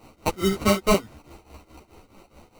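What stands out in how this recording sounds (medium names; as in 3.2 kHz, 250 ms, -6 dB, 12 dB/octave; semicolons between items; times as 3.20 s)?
tremolo triangle 4.7 Hz, depth 90%; aliases and images of a low sample rate 1.7 kHz, jitter 0%; a shimmering, thickened sound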